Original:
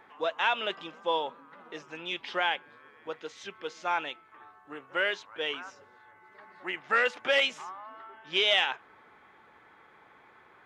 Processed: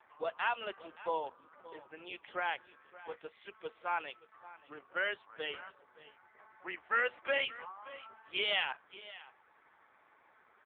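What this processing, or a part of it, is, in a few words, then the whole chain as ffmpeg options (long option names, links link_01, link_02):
satellite phone: -filter_complex "[0:a]asettb=1/sr,asplit=3[link_01][link_02][link_03];[link_01]atrim=end=0.514[link_04];[link_02]atrim=start=0.51:end=2.49,asetpts=PTS-STARTPTS,afade=type=in:duration=0.004:curve=qsin,afade=type=out:start_time=1.976:duration=0.004:curve=qsin,equalizer=frequency=4600:width_type=o:width=2.6:gain=-4[link_05];[link_03]atrim=start=2.486[link_06];[link_04][link_05]acrossfade=duration=0.004:curve1=hsin:curve2=qsin[link_07];[link_07][link_06]acrossfade=duration=0.004:curve1=qsin:curve2=hsin,highpass=310,lowpass=3300,aecho=1:1:574:0.133,volume=-4.5dB" -ar 8000 -c:a libopencore_amrnb -b:a 5900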